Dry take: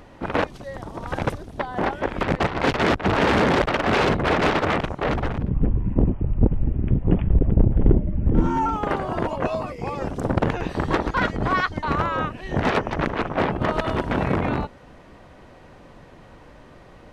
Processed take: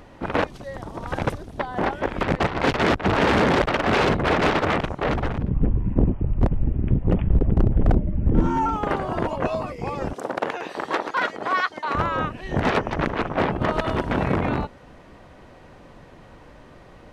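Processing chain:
wavefolder on the positive side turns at −10 dBFS
0:10.13–0:11.95: high-pass filter 450 Hz 12 dB per octave

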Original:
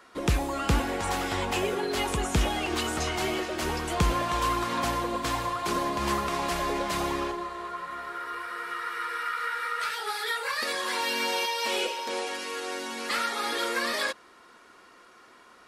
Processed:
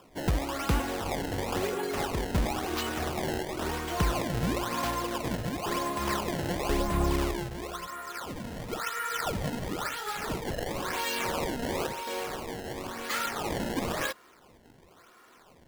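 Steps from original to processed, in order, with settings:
0:06.69–0:07.87: RIAA equalisation playback
0:08.67–0:09.48: comb filter 4.4 ms, depth 94%
sample-and-hold swept by an LFO 21×, swing 160% 0.97 Hz
level −2.5 dB

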